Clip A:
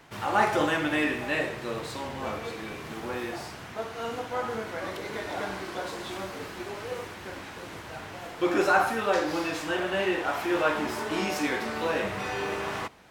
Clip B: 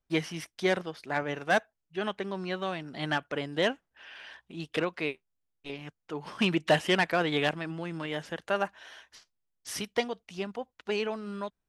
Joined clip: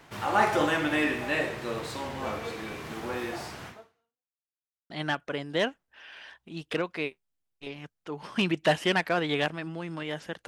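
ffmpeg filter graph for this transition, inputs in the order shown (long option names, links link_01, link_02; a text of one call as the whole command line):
ffmpeg -i cue0.wav -i cue1.wav -filter_complex "[0:a]apad=whole_dur=10.47,atrim=end=10.47,asplit=2[link_01][link_02];[link_01]atrim=end=4.42,asetpts=PTS-STARTPTS,afade=type=out:start_time=3.68:duration=0.74:curve=exp[link_03];[link_02]atrim=start=4.42:end=4.9,asetpts=PTS-STARTPTS,volume=0[link_04];[1:a]atrim=start=2.93:end=8.5,asetpts=PTS-STARTPTS,afade=type=in:duration=0.004:curve=hsin[link_05];[link_03][link_04][link_05]concat=n=3:v=0:a=1" out.wav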